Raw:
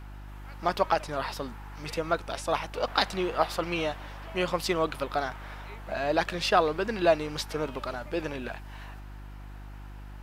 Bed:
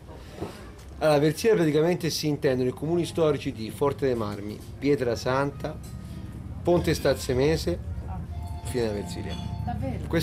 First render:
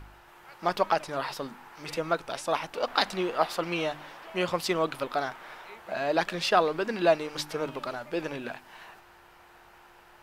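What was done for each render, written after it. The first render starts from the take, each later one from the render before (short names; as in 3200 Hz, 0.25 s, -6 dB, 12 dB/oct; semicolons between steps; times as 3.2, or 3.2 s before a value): de-hum 50 Hz, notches 6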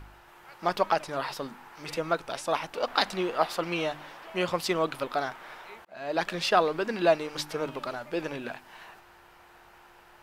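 5.85–6.28 fade in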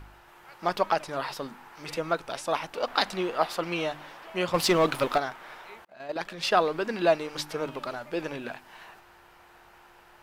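4.54–5.18 sample leveller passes 2; 5.86–6.43 level quantiser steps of 10 dB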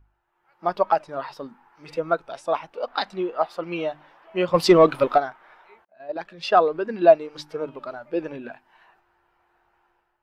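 AGC gain up to 7.5 dB; spectral expander 1.5:1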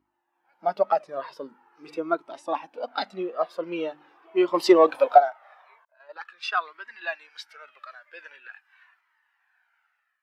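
high-pass sweep 270 Hz -> 1700 Hz, 4.12–6.67; cascading flanger falling 0.44 Hz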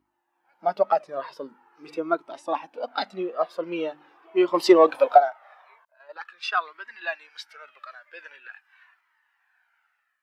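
gain +1 dB; limiter -3 dBFS, peak gain reduction 2 dB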